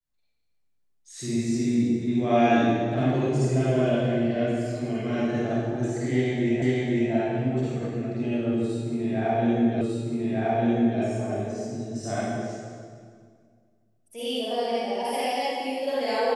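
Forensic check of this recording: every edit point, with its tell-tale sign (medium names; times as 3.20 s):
6.62 s: repeat of the last 0.5 s
9.81 s: repeat of the last 1.2 s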